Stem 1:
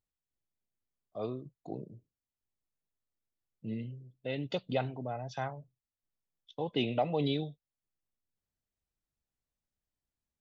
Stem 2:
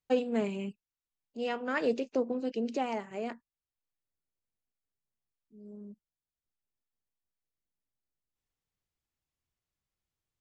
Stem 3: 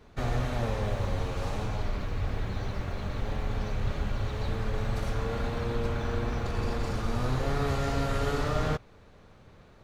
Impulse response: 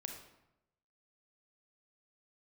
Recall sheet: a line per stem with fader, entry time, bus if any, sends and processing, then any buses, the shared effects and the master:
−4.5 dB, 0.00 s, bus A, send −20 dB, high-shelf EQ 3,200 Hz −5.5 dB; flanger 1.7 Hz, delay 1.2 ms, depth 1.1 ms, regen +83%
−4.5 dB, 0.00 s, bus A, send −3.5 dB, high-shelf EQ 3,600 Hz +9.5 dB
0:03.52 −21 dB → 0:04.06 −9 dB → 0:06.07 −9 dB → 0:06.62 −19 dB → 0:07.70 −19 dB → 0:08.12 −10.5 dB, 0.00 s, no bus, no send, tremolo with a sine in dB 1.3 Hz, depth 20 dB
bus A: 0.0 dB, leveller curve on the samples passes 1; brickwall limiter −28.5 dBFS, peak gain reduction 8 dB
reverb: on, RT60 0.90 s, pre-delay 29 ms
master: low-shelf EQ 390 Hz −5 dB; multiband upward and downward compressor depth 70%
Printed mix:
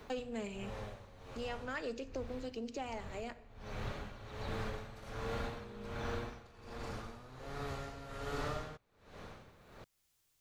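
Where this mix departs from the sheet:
stem 1: muted
stem 2 −4.5 dB → −13.5 dB
stem 3 −21.0 dB → −13.5 dB

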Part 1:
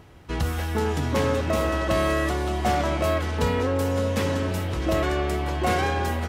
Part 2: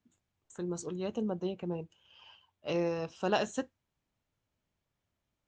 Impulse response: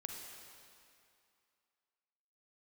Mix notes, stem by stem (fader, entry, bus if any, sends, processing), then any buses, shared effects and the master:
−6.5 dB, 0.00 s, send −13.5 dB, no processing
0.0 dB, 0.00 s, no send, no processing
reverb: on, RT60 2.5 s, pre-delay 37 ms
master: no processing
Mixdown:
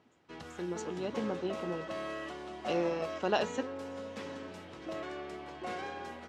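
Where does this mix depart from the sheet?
stem 1 −6.5 dB → −16.5 dB
master: extra band-pass filter 210–6,300 Hz

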